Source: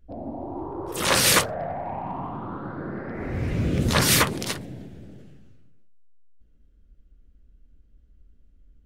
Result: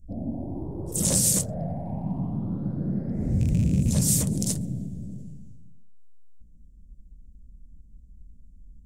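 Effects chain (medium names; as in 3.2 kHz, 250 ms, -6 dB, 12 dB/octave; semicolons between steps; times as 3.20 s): rattle on loud lows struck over -22 dBFS, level -14 dBFS; FFT filter 100 Hz 0 dB, 190 Hz +4 dB, 370 Hz -12 dB, 610 Hz -11 dB, 1.2 kHz -29 dB, 2.6 kHz -24 dB, 4.2 kHz -15 dB, 7.6 kHz +4 dB, 13 kHz -5 dB; compression 6:1, threshold -25 dBFS, peak gain reduction 8.5 dB; trim +6.5 dB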